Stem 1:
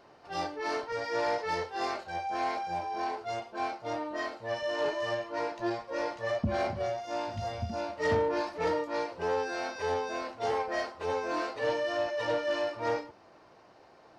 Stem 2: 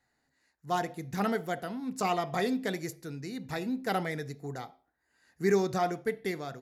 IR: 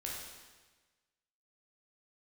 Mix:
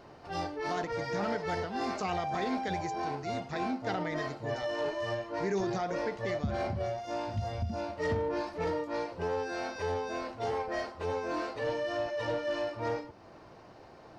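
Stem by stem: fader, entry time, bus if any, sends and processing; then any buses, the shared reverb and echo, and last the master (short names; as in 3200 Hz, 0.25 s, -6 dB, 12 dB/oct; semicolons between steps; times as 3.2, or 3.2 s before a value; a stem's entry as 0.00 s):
+2.5 dB, 0.00 s, no send, low shelf 230 Hz +11 dB; compressor 1.5:1, threshold -44 dBFS, peak gain reduction 9.5 dB
-2.0 dB, 0.00 s, no send, elliptic low-pass 6700 Hz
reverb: off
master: limiter -23.5 dBFS, peak gain reduction 5.5 dB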